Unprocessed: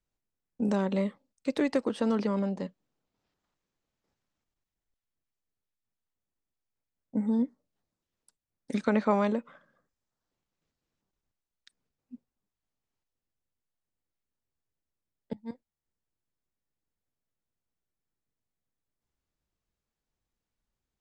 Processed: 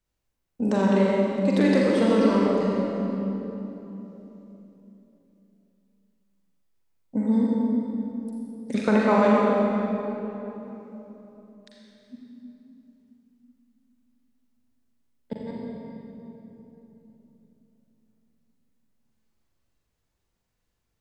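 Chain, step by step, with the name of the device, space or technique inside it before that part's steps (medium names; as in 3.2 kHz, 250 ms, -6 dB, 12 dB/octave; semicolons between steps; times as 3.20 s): tunnel (flutter echo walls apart 7.1 m, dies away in 0.4 s; reverberation RT60 3.5 s, pre-delay 39 ms, DRR -3 dB); trim +3 dB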